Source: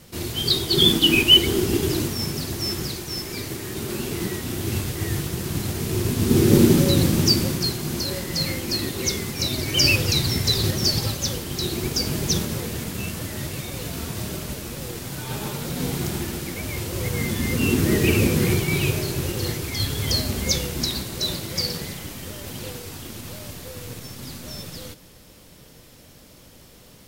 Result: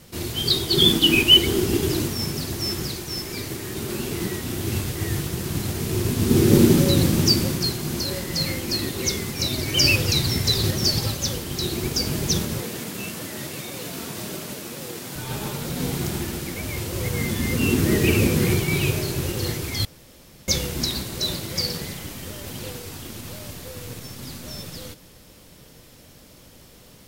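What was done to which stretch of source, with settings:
12.62–15.16 s: high-pass 180 Hz
19.85–20.48 s: room tone

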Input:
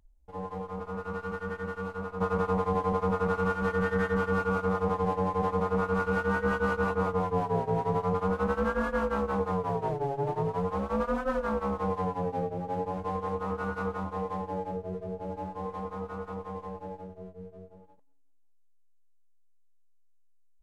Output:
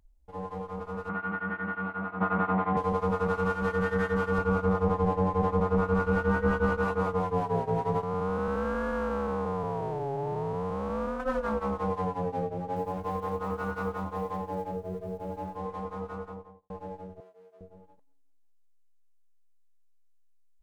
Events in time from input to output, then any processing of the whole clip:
1.09–2.77 s: cabinet simulation 120–3100 Hz, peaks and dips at 210 Hz +6 dB, 330 Hz +8 dB, 470 Hz -8 dB, 700 Hz +6 dB, 1.4 kHz +7 dB, 2 kHz +6 dB
4.38–6.78 s: tilt EQ -1.5 dB/octave
8.03–11.20 s: spectral blur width 234 ms
12.76–15.58 s: block-companded coder 7-bit
16.10–16.70 s: studio fade out
17.20–17.61 s: high-pass 700 Hz

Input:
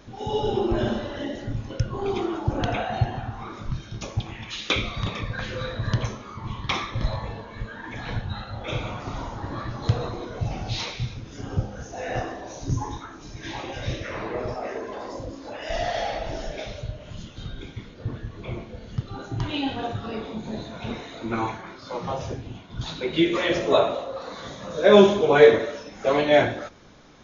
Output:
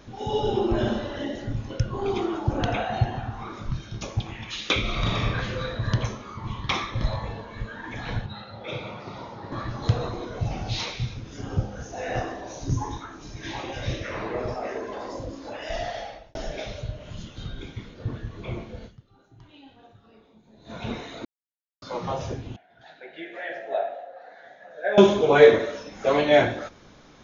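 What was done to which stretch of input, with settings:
4.81–5.26 s: reverb throw, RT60 1.4 s, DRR -3.5 dB
8.26–9.52 s: cabinet simulation 170–4900 Hz, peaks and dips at 280 Hz -8 dB, 730 Hz -5 dB, 1.1 kHz -5 dB, 1.6 kHz -7 dB, 3 kHz -6 dB
15.54–16.35 s: fade out
18.86–20.71 s: dip -23 dB, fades 0.35 s exponential
21.25–21.82 s: mute
22.56–24.98 s: two resonant band-passes 1.1 kHz, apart 1.2 oct

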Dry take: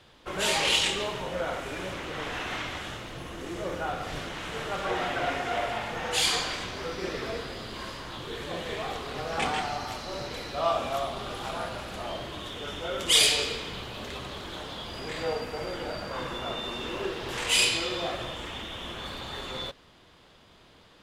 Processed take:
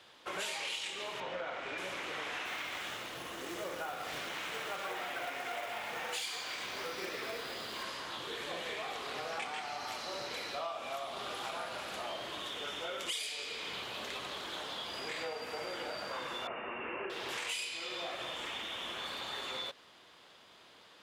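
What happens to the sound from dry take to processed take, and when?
1.20–1.78 s: low-pass 4 kHz
2.45–7.84 s: short-mantissa float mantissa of 2-bit
16.47–17.10 s: steep low-pass 2.8 kHz 96 dB/octave
whole clip: high-pass 620 Hz 6 dB/octave; dynamic bell 2.3 kHz, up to +4 dB, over -49 dBFS, Q 5.3; compression 10:1, threshold -36 dBFS

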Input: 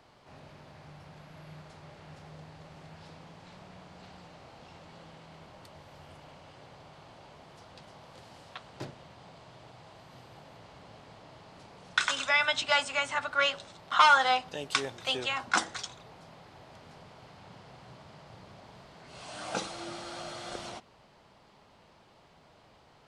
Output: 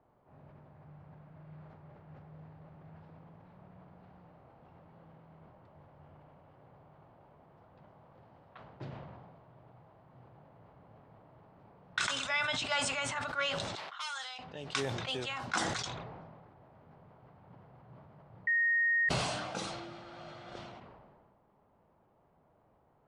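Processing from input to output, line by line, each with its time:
13.75–14.39 s: differentiator
18.47–19.09 s: bleep 1.86 kHz -18 dBFS
whole clip: level-controlled noise filter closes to 920 Hz, open at -30 dBFS; dynamic bell 130 Hz, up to +6 dB, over -59 dBFS, Q 1.2; decay stretcher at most 30 dB/s; trim -7.5 dB

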